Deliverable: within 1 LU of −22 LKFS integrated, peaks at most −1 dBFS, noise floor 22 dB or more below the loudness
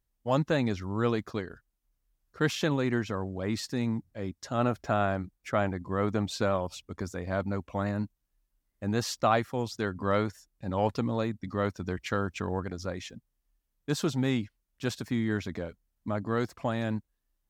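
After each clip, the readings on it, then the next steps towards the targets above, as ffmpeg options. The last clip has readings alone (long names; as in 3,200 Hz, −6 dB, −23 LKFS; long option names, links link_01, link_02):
integrated loudness −31.0 LKFS; sample peak −11.5 dBFS; target loudness −22.0 LKFS
→ -af "volume=9dB"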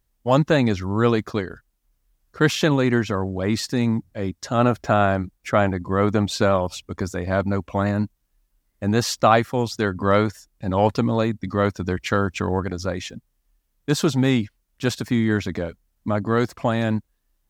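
integrated loudness −22.0 LKFS; sample peak −2.5 dBFS; background noise floor −71 dBFS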